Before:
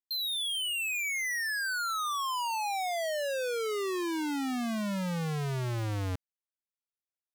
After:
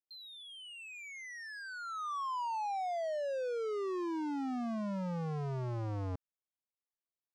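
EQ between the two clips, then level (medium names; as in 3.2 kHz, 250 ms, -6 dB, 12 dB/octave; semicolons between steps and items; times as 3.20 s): tape spacing loss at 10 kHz 27 dB; bass shelf 380 Hz -5 dB; high-order bell 2.4 kHz -8.5 dB; 0.0 dB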